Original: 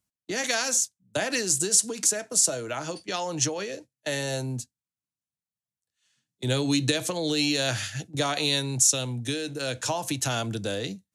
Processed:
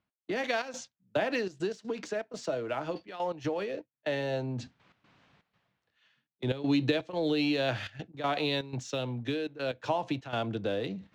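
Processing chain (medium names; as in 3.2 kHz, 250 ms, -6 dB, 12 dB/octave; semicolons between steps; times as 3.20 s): Bessel low-pass 2.2 kHz, order 4; bass shelf 190 Hz -9.5 dB; in parallel at -10 dB: crossover distortion -42.5 dBFS; on the sum: trance gate "x.xxx.xxxxxx." 122 bpm -12 dB; reverse; upward compressor, threshold -33 dBFS; reverse; dynamic bell 1.6 kHz, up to -5 dB, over -44 dBFS, Q 1.1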